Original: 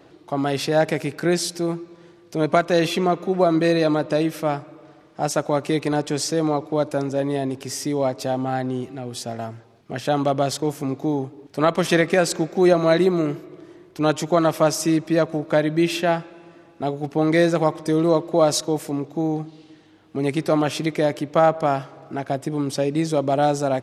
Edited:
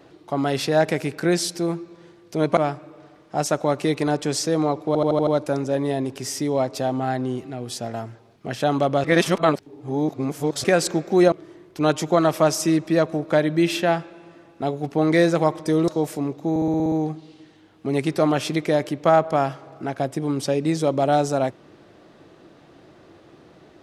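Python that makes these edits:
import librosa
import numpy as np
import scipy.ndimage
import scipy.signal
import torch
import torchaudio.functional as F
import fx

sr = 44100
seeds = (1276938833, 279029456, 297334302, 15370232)

y = fx.edit(x, sr, fx.cut(start_s=2.57, length_s=1.85),
    fx.stutter(start_s=6.72, slice_s=0.08, count=6),
    fx.reverse_span(start_s=10.49, length_s=1.6),
    fx.cut(start_s=12.77, length_s=0.75),
    fx.cut(start_s=18.08, length_s=0.52),
    fx.stutter(start_s=19.22, slice_s=0.06, count=8), tone=tone)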